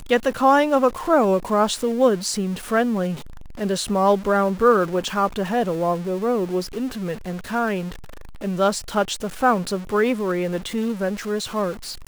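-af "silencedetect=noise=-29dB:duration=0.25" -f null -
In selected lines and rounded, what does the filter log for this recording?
silence_start: 3.15
silence_end: 3.59 | silence_duration: 0.44
silence_start: 7.92
silence_end: 8.42 | silence_duration: 0.50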